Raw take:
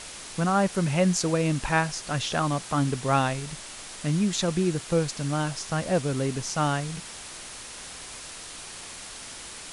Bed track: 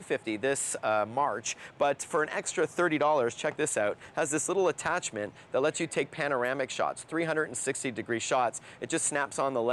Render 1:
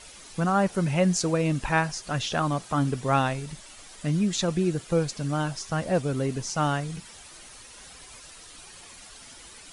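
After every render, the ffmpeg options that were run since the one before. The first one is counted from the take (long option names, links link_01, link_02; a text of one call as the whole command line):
ffmpeg -i in.wav -af "afftdn=noise_reduction=10:noise_floor=-41" out.wav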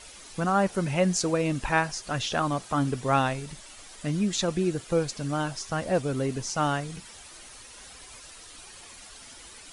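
ffmpeg -i in.wav -af "equalizer=frequency=160:width=2.9:gain=-4.5" out.wav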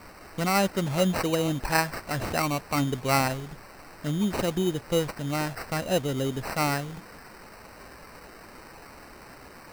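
ffmpeg -i in.wav -af "acrusher=samples=13:mix=1:aa=0.000001" out.wav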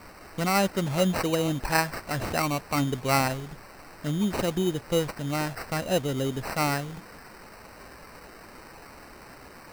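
ffmpeg -i in.wav -af anull out.wav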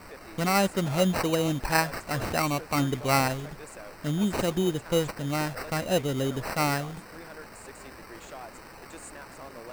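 ffmpeg -i in.wav -i bed.wav -filter_complex "[1:a]volume=-16.5dB[link_01];[0:a][link_01]amix=inputs=2:normalize=0" out.wav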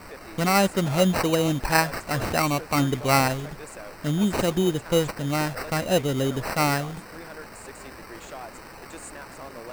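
ffmpeg -i in.wav -af "volume=3.5dB" out.wav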